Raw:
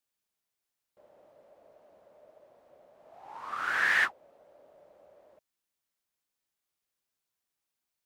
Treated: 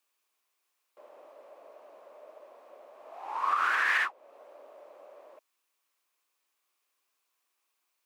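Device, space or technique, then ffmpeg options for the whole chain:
laptop speaker: -af "highpass=f=300:w=0.5412,highpass=f=300:w=1.3066,equalizer=f=1.1k:t=o:w=0.4:g=9,equalizer=f=2.5k:t=o:w=0.4:g=5.5,alimiter=limit=-23.5dB:level=0:latency=1:release=372,volume=6dB"

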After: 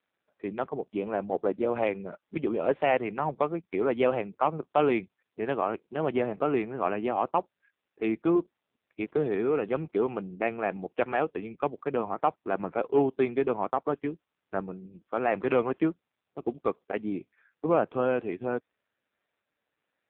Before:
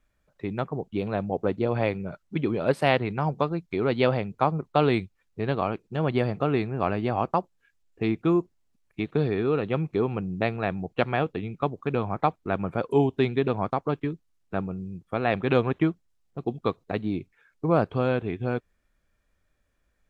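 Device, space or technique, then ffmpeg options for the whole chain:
telephone: -af "highpass=270,lowpass=3.1k,asoftclip=type=tanh:threshold=-12.5dB,volume=1dB" -ar 8000 -c:a libopencore_amrnb -b:a 5900

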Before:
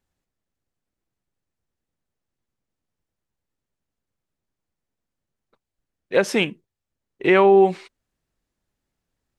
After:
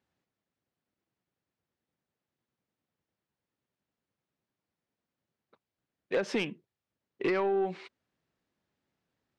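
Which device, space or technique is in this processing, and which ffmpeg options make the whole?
AM radio: -af "highpass=120,lowpass=4.5k,acompressor=threshold=-24dB:ratio=8,asoftclip=type=tanh:threshold=-21dB"

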